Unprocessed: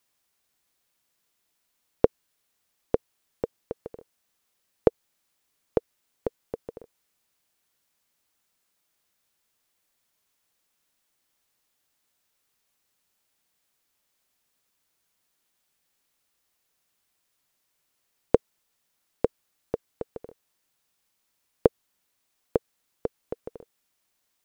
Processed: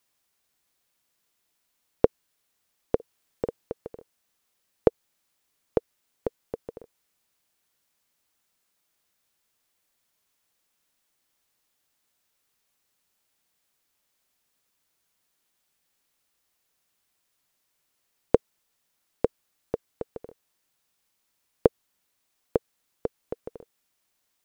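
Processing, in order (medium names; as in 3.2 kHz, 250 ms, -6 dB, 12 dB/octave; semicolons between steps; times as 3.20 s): 2.95–3.72 s: doubling 49 ms -5 dB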